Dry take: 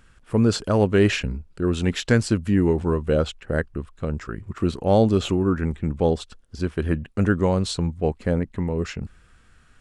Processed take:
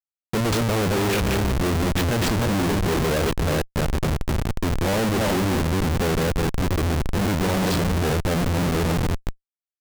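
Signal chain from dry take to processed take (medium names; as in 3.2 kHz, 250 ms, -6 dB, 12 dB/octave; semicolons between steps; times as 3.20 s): backward echo that repeats 176 ms, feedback 44%, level -4.5 dB; Schmitt trigger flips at -27 dBFS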